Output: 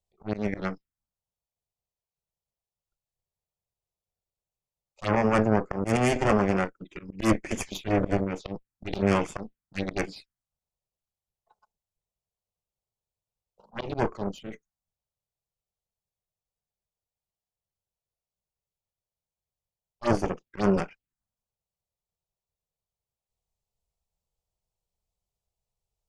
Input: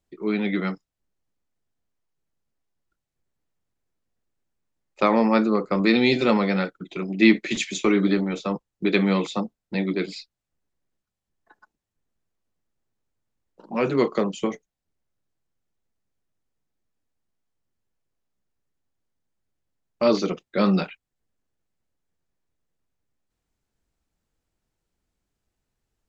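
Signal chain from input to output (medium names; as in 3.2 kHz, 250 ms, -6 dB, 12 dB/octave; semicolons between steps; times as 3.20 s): 9.04–10.10 s: dynamic bell 2.3 kHz, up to +7 dB, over -44 dBFS, Q 0.87; Chebyshev shaper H 6 -8 dB, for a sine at -4.5 dBFS; slow attack 108 ms; touch-sensitive phaser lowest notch 280 Hz, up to 3.9 kHz, full sweep at -19.5 dBFS; trim -5.5 dB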